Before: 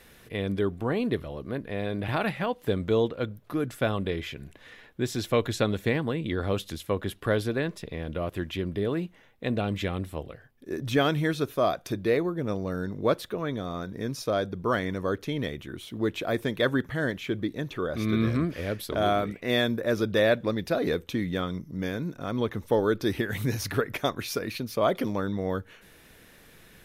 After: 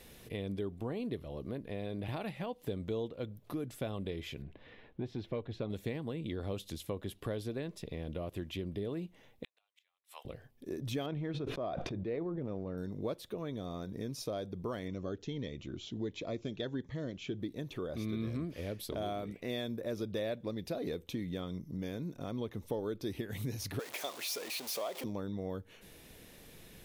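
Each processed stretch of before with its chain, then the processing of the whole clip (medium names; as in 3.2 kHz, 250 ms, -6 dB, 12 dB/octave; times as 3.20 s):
4.42–5.70 s: distance through air 330 m + transformer saturation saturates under 360 Hz
9.44–10.25 s: high-pass 1 kHz 24 dB/octave + inverted gate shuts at -30 dBFS, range -40 dB
11.06–12.78 s: low-pass 2.3 kHz + transient shaper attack -5 dB, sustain -10 dB + decay stretcher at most 22 dB/s
14.88–17.40 s: brick-wall FIR low-pass 7.5 kHz + Shepard-style phaser rising 1.4 Hz
23.79–25.04 s: jump at every zero crossing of -27.5 dBFS + high-pass 590 Hz
whole clip: compression 2.5:1, threshold -39 dBFS; peaking EQ 1.5 kHz -9 dB 1 oct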